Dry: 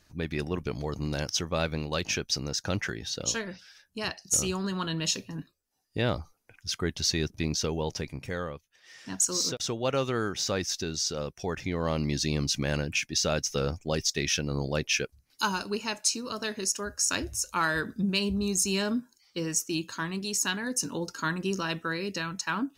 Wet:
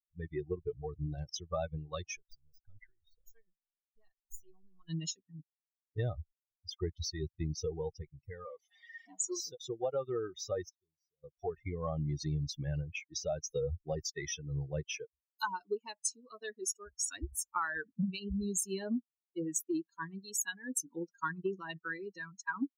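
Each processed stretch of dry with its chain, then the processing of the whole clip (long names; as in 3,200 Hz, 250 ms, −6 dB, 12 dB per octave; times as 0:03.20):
0:02.16–0:04.89: gain on one half-wave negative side −7 dB + downward compressor 1.5 to 1, threshold −52 dBFS
0:08.45–0:09.36: converter with a step at zero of −30.5 dBFS + band-pass filter 290–6,100 Hz + parametric band 1,700 Hz −7.5 dB 0.2 octaves
0:10.69–0:11.24: guitar amp tone stack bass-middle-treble 10-0-1 + mid-hump overdrive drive 20 dB, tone 2,700 Hz, clips at −29 dBFS + highs frequency-modulated by the lows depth 0.26 ms
whole clip: spectral dynamics exaggerated over time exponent 3; downward compressor, threshold −38 dBFS; flat-topped bell 3,300 Hz −8 dB; level +7 dB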